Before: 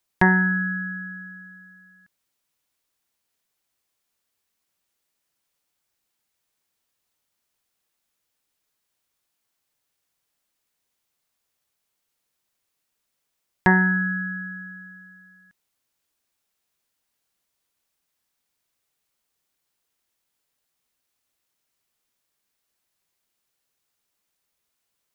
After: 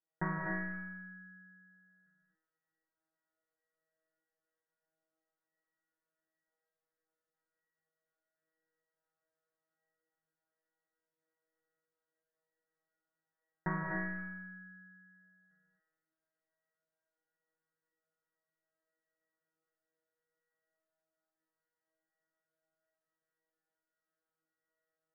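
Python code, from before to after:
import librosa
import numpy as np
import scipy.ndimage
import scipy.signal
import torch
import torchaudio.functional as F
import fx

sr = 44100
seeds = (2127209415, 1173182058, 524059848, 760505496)

y = fx.rattle_buzz(x, sr, strikes_db=-24.0, level_db=-19.0)
y = scipy.signal.sosfilt(scipy.signal.cheby1(6, 9, 2000.0, 'lowpass', fs=sr, output='sos'), y)
y = fx.comb_fb(y, sr, f0_hz=160.0, decay_s=0.9, harmonics='all', damping=0.0, mix_pct=100)
y = fx.rev_gated(y, sr, seeds[0], gate_ms=310, shape='rising', drr_db=0.0)
y = y * librosa.db_to_amplitude(12.5)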